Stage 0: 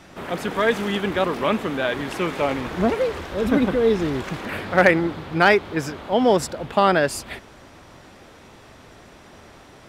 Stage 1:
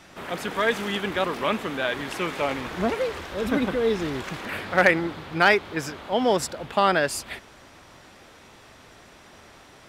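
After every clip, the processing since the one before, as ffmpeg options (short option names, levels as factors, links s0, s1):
-af "tiltshelf=f=850:g=-3,volume=0.708"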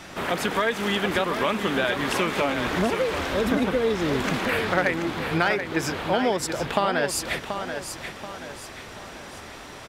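-af "acompressor=threshold=0.0355:ratio=5,aecho=1:1:732|1464|2196|2928|3660:0.398|0.163|0.0669|0.0274|0.0112,volume=2.51"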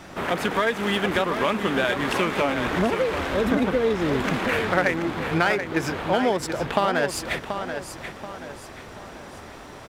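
-filter_complex "[0:a]asplit=2[s0][s1];[s1]adynamicsmooth=sensitivity=6:basefreq=1100,volume=0.841[s2];[s0][s2]amix=inputs=2:normalize=0,acrusher=bits=10:mix=0:aa=0.000001,volume=0.631"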